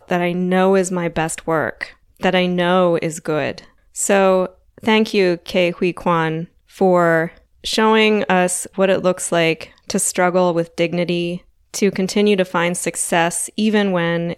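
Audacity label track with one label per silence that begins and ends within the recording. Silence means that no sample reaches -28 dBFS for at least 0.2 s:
1.860000	2.220000	silence
3.590000	3.960000	silence
4.460000	4.780000	silence
6.440000	6.780000	silence
7.290000	7.640000	silence
9.640000	9.900000	silence
11.370000	11.740000	silence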